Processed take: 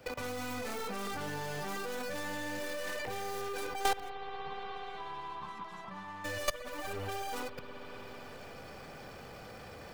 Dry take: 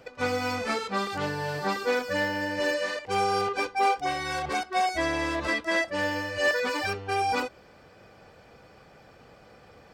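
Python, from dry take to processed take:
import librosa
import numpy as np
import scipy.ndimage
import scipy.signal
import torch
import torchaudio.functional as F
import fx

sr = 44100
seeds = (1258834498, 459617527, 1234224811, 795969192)

y = fx.tracing_dist(x, sr, depth_ms=0.35)
y = fx.transient(y, sr, attack_db=-7, sustain_db=6)
y = fx.level_steps(y, sr, step_db=23)
y = fx.quant_float(y, sr, bits=2)
y = fx.double_bandpass(y, sr, hz=430.0, octaves=2.5, at=(4.08, 6.24), fade=0.02)
y = fx.rev_spring(y, sr, rt60_s=3.5, pass_ms=(60,), chirp_ms=60, drr_db=11.0)
y = fx.band_squash(y, sr, depth_pct=70)
y = y * 10.0 ** (7.0 / 20.0)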